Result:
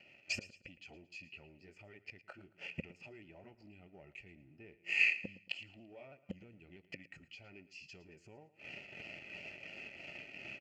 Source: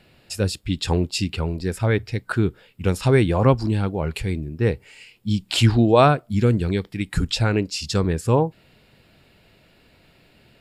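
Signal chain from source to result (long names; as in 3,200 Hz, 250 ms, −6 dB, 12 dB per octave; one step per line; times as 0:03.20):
pitch shifter swept by a sawtooth −2 semitones, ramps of 322 ms
downward compressor 16 to 1, threshold −29 dBFS, peak gain reduction 17.5 dB
leveller curve on the samples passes 2
automatic gain control gain up to 14 dB
phaser with its sweep stopped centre 2,500 Hz, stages 8
tuned comb filter 170 Hz, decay 0.77 s, harmonics all, mix 30%
gate with flip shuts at −18 dBFS, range −28 dB
formant filter e
repeating echo 112 ms, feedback 32%, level −17 dB
level +12 dB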